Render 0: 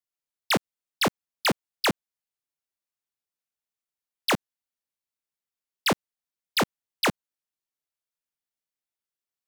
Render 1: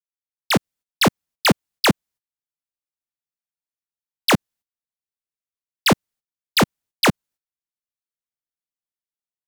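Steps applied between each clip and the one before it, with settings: tone controls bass +6 dB, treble +1 dB; AGC gain up to 11.5 dB; gate -45 dBFS, range -16 dB; gain -4 dB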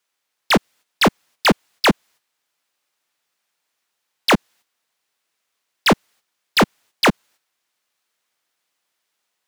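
overdrive pedal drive 32 dB, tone 4000 Hz, clips at -7 dBFS; gain -1 dB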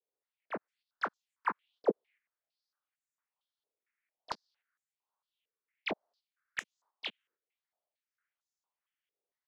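phaser stages 4, 1.2 Hz, lowest notch 660–2500 Hz; overdrive pedal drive 15 dB, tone 1200 Hz, clips at -7 dBFS; stepped band-pass 4.4 Hz 450–7000 Hz; gain -5 dB

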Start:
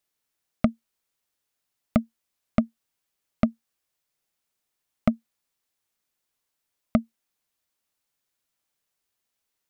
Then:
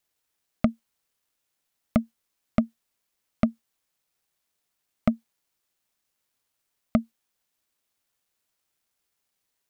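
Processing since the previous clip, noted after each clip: in parallel at -1 dB: limiter -16.5 dBFS, peak gain reduction 9 dB; on the sum: requantised 12-bit, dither none; gain -3.5 dB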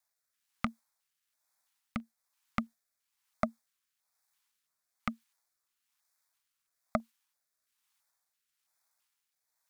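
LFO notch square 1.5 Hz 640–2900 Hz; rotary speaker horn 1.1 Hz; resonant low shelf 560 Hz -12 dB, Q 1.5; gain +1.5 dB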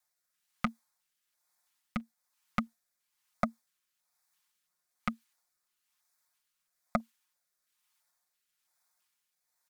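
comb 5.6 ms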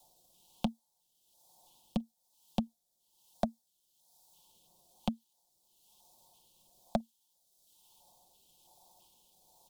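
elliptic band-stop 870–3200 Hz, stop band 50 dB; three-band squash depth 70%; gain +5 dB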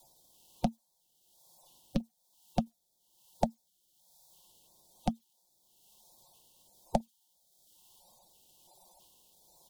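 bin magnitudes rounded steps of 30 dB; gain +3.5 dB

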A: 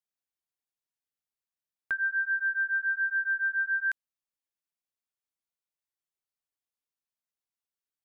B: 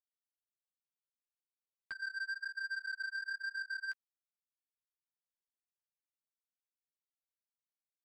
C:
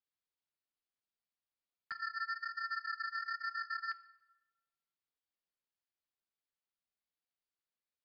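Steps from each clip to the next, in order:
chorus voices 2, 1.1 Hz, delay 13 ms, depth 3 ms; power-law curve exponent 2; limiter -33 dBFS, peak gain reduction 11 dB; gain +1 dB
ring modulator 210 Hz; reverb RT60 1.2 s, pre-delay 13 ms, DRR 12.5 dB; downsampling 11025 Hz; gain +3.5 dB

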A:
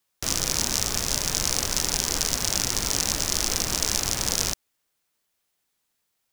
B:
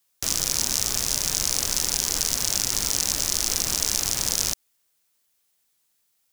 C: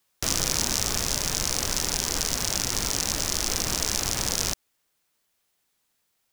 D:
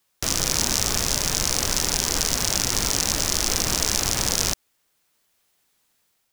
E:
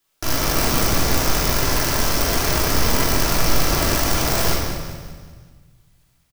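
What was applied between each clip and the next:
high shelf 3800 Hz +8.5 dB; in parallel at +2.5 dB: limiter -7 dBFS, peak gain reduction 11.5 dB; on the sum: gain -8.5 dB
vocal rider 2 s; high shelf 3900 Hz -9 dB; gain +3.5 dB
AGC gain up to 4 dB; gain +1.5 dB
tracing distortion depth 0.12 ms; feedback echo 0.191 s, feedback 44%, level -10.5 dB; shoebox room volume 930 m³, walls mixed, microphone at 3 m; gain -2.5 dB

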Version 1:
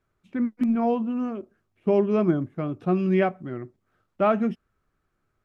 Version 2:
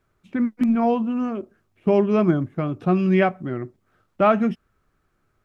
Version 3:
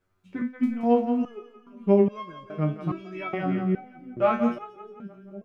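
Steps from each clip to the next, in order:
dynamic EQ 370 Hz, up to -4 dB, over -31 dBFS, Q 0.74; gain +6 dB
split-band echo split 460 Hz, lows 0.556 s, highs 0.174 s, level -8.5 dB; stepped resonator 2.4 Hz 93–540 Hz; gain +4.5 dB

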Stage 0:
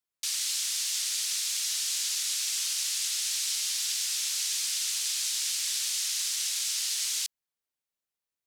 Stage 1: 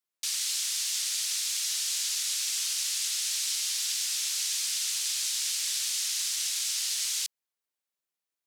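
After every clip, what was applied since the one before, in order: HPF 220 Hz 6 dB/oct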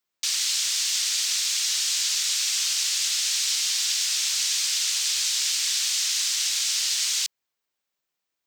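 bell 11000 Hz -12 dB 0.52 oct; gain +7.5 dB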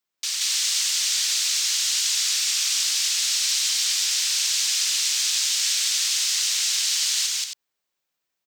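loudspeakers at several distances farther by 61 m 0 dB, 93 m -7 dB; gain -1.5 dB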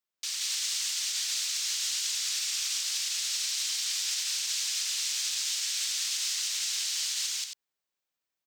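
limiter -14 dBFS, peak gain reduction 5 dB; gain -7 dB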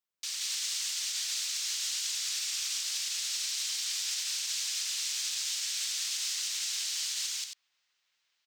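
outdoor echo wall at 260 m, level -26 dB; gain -2.5 dB

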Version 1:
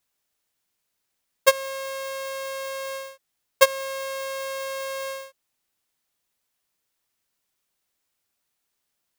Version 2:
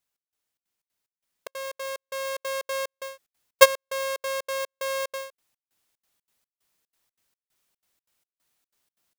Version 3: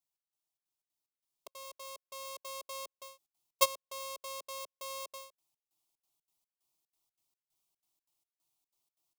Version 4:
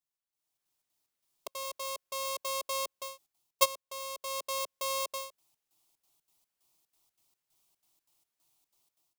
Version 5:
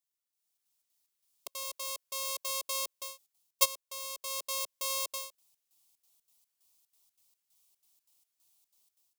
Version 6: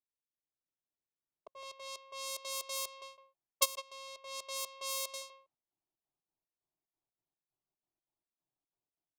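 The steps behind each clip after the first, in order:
vocal rider 2 s; step gate "xx..xxx.xx." 184 bpm -60 dB; gain -1 dB
fixed phaser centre 330 Hz, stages 8; gain -7 dB
AGC gain up to 13 dB; gain -4 dB
high shelf 2500 Hz +11 dB; gain -7 dB
speakerphone echo 0.16 s, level -10 dB; low-pass opened by the level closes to 640 Hz, open at -31.5 dBFS; gain -3 dB

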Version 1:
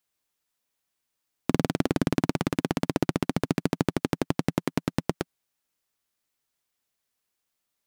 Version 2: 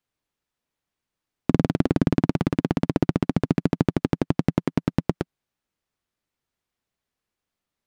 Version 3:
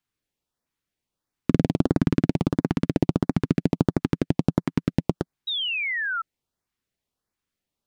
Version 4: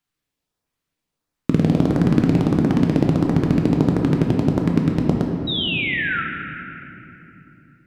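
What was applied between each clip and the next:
LPF 3200 Hz 6 dB/oct; low shelf 320 Hz +7.5 dB
LFO notch saw up 1.5 Hz 460–3400 Hz; painted sound fall, 5.47–6.22, 1300–3900 Hz -27 dBFS
shoebox room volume 190 m³, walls hard, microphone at 0.44 m; gain +2 dB

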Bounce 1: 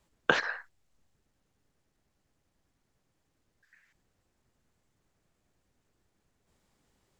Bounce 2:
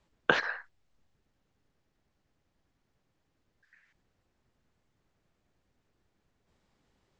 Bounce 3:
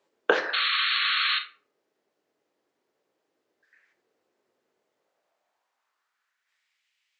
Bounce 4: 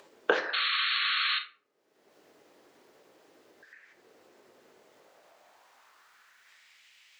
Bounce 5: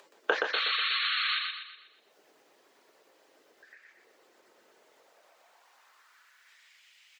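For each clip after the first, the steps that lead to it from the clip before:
LPF 5300 Hz 12 dB/oct
painted sound noise, 0.53–1.39, 1100–4400 Hz -26 dBFS; high-pass sweep 410 Hz -> 2400 Hz, 4.77–6.84; reverb RT60 0.45 s, pre-delay 16 ms, DRR 6.5 dB
upward compressor, threshold -39 dBFS; gain -3.5 dB
HPF 540 Hz 6 dB/oct; reverb removal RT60 0.77 s; on a send: feedback echo 0.122 s, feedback 44%, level -4 dB

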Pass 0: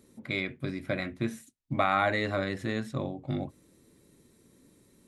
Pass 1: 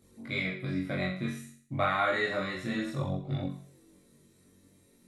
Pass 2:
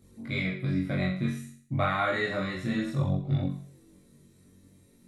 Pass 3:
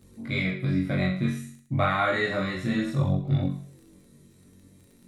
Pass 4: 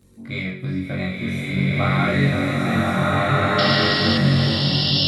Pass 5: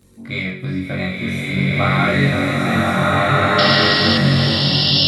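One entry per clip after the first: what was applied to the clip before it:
on a send: flutter echo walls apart 3.7 m, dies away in 0.53 s; on the sum: detuned doubles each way 11 cents
tone controls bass +7 dB, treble 0 dB
crackle 22/s -49 dBFS; gain +3 dB
painted sound noise, 3.58–4.18, 2700–5500 Hz -24 dBFS; bloom reverb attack 1.61 s, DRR -7.5 dB
low shelf 430 Hz -3.5 dB; gain +5 dB

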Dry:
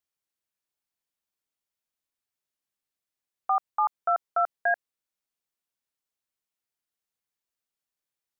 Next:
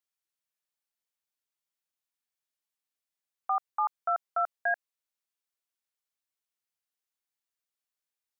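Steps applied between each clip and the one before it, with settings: low shelf 450 Hz -10 dB; gain -2 dB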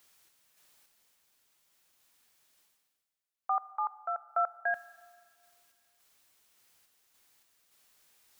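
reverse; upward compressor, threshold -44 dBFS; reverse; random-step tremolo; reverb RT60 2.1 s, pre-delay 34 ms, DRR 16.5 dB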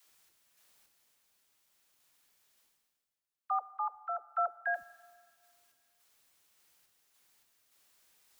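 dispersion lows, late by 90 ms, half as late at 340 Hz; gain -2 dB

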